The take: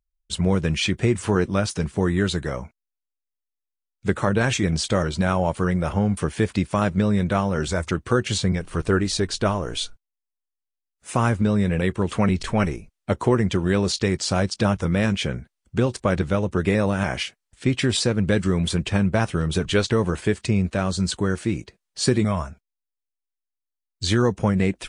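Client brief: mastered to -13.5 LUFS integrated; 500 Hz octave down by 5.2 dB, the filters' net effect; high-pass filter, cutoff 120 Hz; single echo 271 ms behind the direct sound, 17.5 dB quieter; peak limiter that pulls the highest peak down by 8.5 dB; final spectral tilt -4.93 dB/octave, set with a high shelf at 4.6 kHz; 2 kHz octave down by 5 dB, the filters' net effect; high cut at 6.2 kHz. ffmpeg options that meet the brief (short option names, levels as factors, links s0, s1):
-af "highpass=120,lowpass=6200,equalizer=f=500:t=o:g=-6.5,equalizer=f=2000:t=o:g=-7.5,highshelf=f=4600:g=6.5,alimiter=limit=0.15:level=0:latency=1,aecho=1:1:271:0.133,volume=5.31"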